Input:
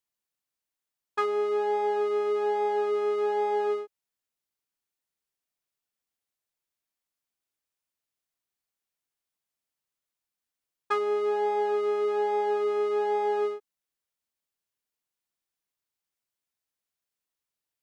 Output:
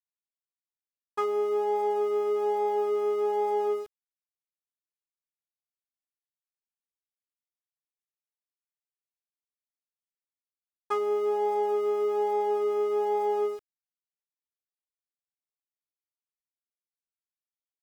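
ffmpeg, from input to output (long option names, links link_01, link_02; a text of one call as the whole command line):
ffmpeg -i in.wav -af "equalizer=frequency=1600:width_type=o:width=0.33:gain=-11,equalizer=frequency=2500:width_type=o:width=0.33:gain=-6,equalizer=frequency=4000:width_type=o:width=0.33:gain=-11,aeval=exprs='val(0)*gte(abs(val(0)),0.00447)':channel_layout=same" out.wav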